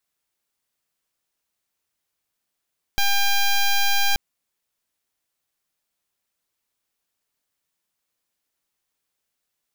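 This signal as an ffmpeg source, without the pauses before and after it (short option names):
-f lavfi -i "aevalsrc='0.126*(2*lt(mod(800*t,1),0.09)-1)':d=1.18:s=44100"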